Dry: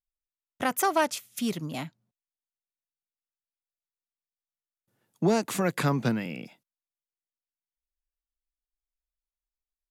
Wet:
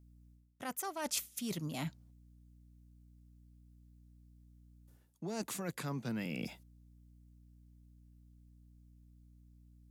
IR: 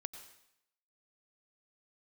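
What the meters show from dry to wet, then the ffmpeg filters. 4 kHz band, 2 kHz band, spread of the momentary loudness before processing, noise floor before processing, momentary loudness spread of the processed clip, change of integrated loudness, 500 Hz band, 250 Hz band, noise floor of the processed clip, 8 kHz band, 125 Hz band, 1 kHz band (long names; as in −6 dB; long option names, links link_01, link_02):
−7.0 dB, −13.0 dB, 13 LU, below −85 dBFS, 9 LU, −11.5 dB, −15.0 dB, −11.0 dB, −65 dBFS, −5.0 dB, −10.5 dB, −15.5 dB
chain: -af "aeval=exprs='val(0)+0.000631*(sin(2*PI*60*n/s)+sin(2*PI*2*60*n/s)/2+sin(2*PI*3*60*n/s)/3+sin(2*PI*4*60*n/s)/4+sin(2*PI*5*60*n/s)/5)':channel_layout=same,areverse,acompressor=threshold=-40dB:ratio=16,areverse,bass=frequency=250:gain=2,treble=frequency=4000:gain=6,volume=3dB"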